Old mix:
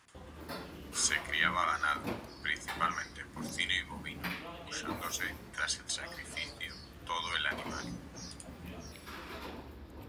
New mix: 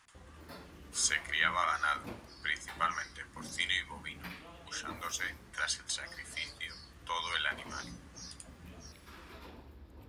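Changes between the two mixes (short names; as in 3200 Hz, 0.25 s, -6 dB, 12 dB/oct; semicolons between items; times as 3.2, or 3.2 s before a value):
background -7.5 dB; master: remove HPF 100 Hz 6 dB/oct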